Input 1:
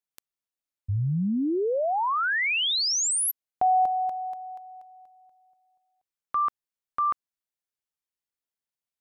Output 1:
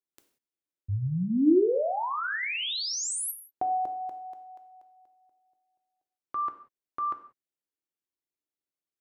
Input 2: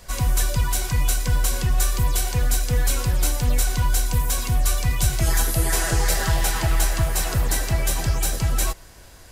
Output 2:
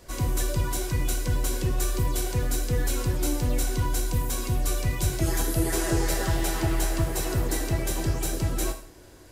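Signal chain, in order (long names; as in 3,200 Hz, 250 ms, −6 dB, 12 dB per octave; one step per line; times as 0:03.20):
parametric band 330 Hz +12.5 dB 1.2 octaves
reverb whose tail is shaped and stops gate 210 ms falling, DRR 6 dB
level −7.5 dB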